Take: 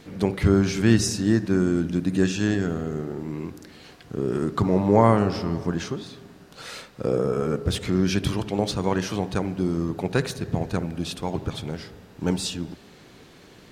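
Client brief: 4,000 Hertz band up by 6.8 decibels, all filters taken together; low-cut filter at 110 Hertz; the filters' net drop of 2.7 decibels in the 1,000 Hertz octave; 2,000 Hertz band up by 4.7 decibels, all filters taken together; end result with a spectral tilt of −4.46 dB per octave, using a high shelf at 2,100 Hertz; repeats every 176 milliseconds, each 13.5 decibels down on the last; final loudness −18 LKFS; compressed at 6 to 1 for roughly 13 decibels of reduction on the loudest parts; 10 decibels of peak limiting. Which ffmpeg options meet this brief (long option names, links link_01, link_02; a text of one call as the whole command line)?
ffmpeg -i in.wav -af "highpass=110,equalizer=frequency=1000:width_type=o:gain=-5.5,equalizer=frequency=2000:width_type=o:gain=5,highshelf=frequency=2100:gain=3,equalizer=frequency=4000:width_type=o:gain=4.5,acompressor=threshold=-27dB:ratio=6,alimiter=limit=-23dB:level=0:latency=1,aecho=1:1:176|352:0.211|0.0444,volume=16dB" out.wav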